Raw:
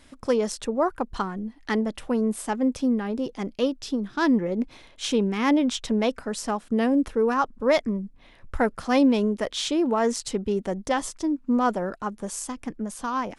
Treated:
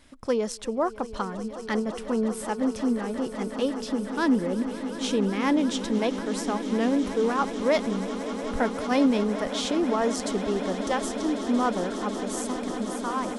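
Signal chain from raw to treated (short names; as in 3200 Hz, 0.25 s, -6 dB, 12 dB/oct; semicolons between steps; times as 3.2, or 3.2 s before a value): swelling echo 0.182 s, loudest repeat 8, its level -16 dB; gain -2.5 dB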